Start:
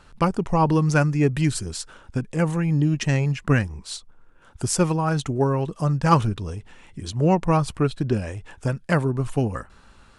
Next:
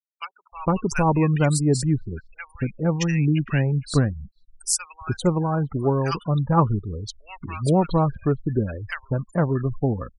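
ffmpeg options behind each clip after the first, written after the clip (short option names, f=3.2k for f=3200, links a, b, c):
-filter_complex "[0:a]highshelf=f=7.9k:g=7,afftfilt=real='re*gte(hypot(re,im),0.0398)':imag='im*gte(hypot(re,im),0.0398)':win_size=1024:overlap=0.75,acrossover=split=1400[a][b];[a]adelay=460[c];[c][b]amix=inputs=2:normalize=0"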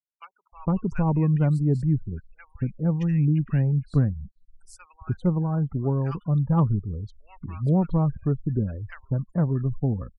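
-filter_complex "[0:a]firequalizer=gain_entry='entry(190,0);entry(340,-7);entry(5500,-28)':delay=0.05:min_phase=1,acrossover=split=530[a][b];[b]asoftclip=type=tanh:threshold=-16dB[c];[a][c]amix=inputs=2:normalize=0"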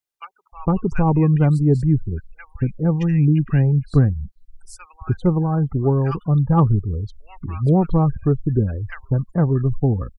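-af "aecho=1:1:2.5:0.3,volume=7dB"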